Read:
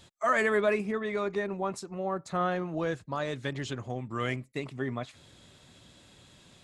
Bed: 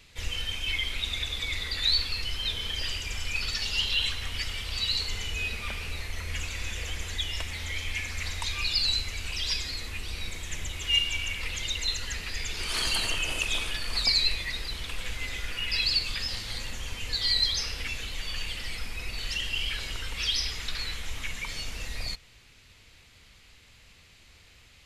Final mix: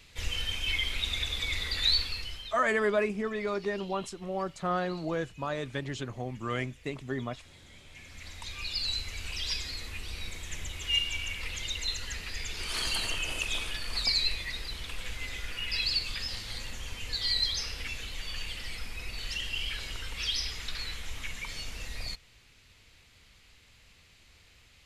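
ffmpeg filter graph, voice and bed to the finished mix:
-filter_complex "[0:a]adelay=2300,volume=0.891[s0];[1:a]volume=8.41,afade=t=out:st=1.87:d=0.72:silence=0.0794328,afade=t=in:st=7.87:d=1.38:silence=0.112202[s1];[s0][s1]amix=inputs=2:normalize=0"

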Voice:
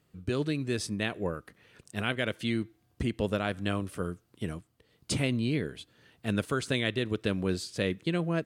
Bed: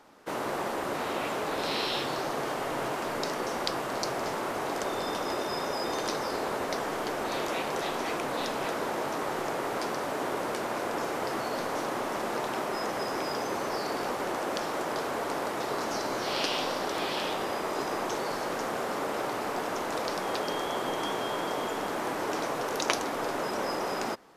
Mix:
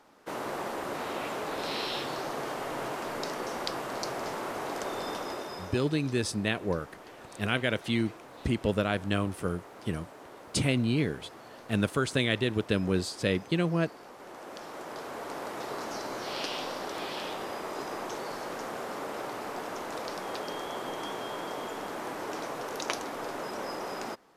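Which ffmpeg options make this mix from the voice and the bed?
-filter_complex "[0:a]adelay=5450,volume=1.26[s0];[1:a]volume=2.82,afade=t=out:st=5.1:d=0.82:silence=0.199526,afade=t=in:st=14.12:d=1.49:silence=0.251189[s1];[s0][s1]amix=inputs=2:normalize=0"

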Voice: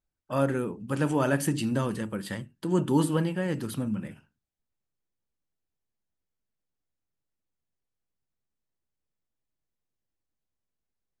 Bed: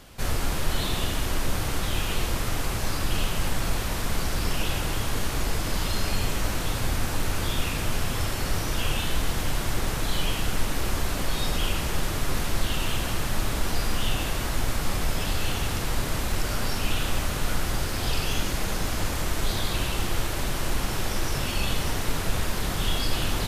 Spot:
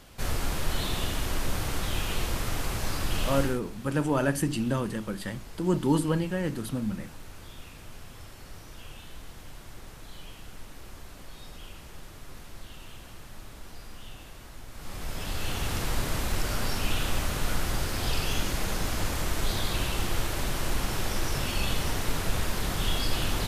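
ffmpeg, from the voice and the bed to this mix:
-filter_complex "[0:a]adelay=2950,volume=0.944[s0];[1:a]volume=4.73,afade=t=out:st=3.39:d=0.21:silence=0.16788,afade=t=in:st=14.71:d=1.08:silence=0.149624[s1];[s0][s1]amix=inputs=2:normalize=0"

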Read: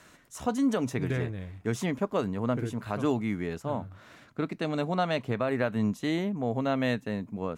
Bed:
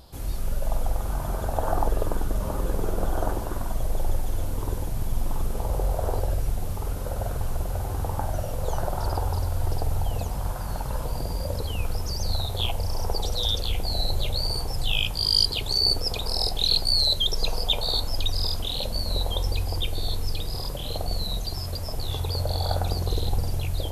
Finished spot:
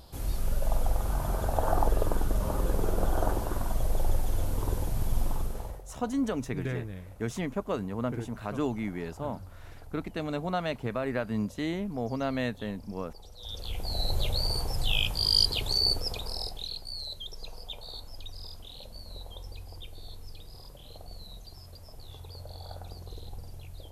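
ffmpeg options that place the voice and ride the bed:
-filter_complex "[0:a]adelay=5550,volume=0.708[s0];[1:a]volume=8.41,afade=t=out:st=5.22:d=0.6:silence=0.0891251,afade=t=in:st=13.38:d=0.82:silence=0.1,afade=t=out:st=15.65:d=1.08:silence=0.188365[s1];[s0][s1]amix=inputs=2:normalize=0"

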